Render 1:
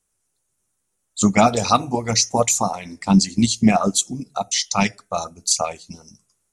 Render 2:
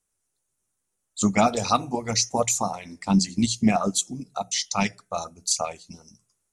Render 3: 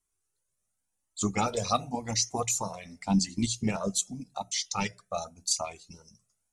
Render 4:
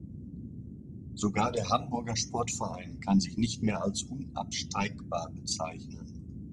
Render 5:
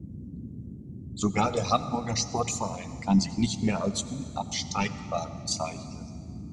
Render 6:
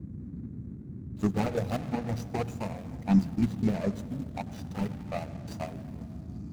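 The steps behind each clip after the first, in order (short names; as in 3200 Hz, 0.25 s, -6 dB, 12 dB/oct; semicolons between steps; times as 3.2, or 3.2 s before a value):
notches 60/120/180 Hz; gain -5 dB
dynamic EQ 1400 Hz, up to -4 dB, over -37 dBFS, Q 1.5; cascading flanger rising 0.89 Hz
band noise 61–260 Hz -43 dBFS; air absorption 89 m
reverb RT60 2.4 s, pre-delay 73 ms, DRR 13.5 dB; gain +3 dB
median filter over 41 samples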